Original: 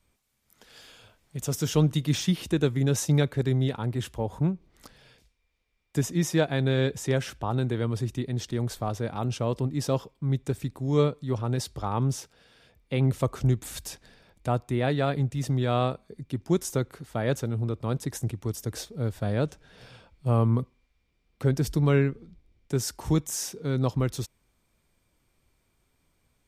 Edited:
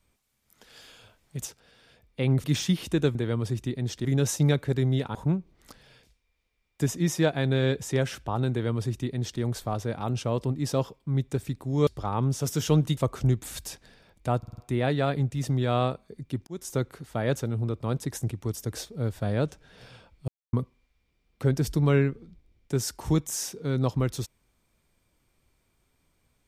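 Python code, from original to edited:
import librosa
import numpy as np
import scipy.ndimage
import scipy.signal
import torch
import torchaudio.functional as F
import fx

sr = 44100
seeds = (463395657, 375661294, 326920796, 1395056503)

y = fx.edit(x, sr, fx.swap(start_s=1.46, length_s=0.57, other_s=12.19, other_length_s=0.98),
    fx.cut(start_s=3.84, length_s=0.46),
    fx.duplicate(start_s=7.66, length_s=0.9, to_s=2.74),
    fx.cut(start_s=11.02, length_s=0.64),
    fx.stutter(start_s=14.58, slice_s=0.05, count=5),
    fx.fade_in_span(start_s=16.47, length_s=0.33),
    fx.silence(start_s=20.28, length_s=0.25), tone=tone)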